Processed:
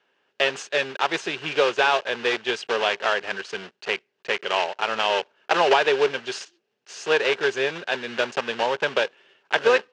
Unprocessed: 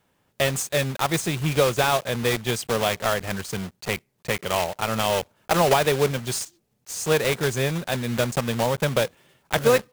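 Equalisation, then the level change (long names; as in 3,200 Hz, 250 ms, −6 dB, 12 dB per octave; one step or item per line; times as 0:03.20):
dynamic equaliser 910 Hz, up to +5 dB, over −38 dBFS, Q 3.5
loudspeaker in its box 390–5,600 Hz, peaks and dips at 400 Hz +8 dB, 1,600 Hz +8 dB, 2,800 Hz +9 dB
−2.0 dB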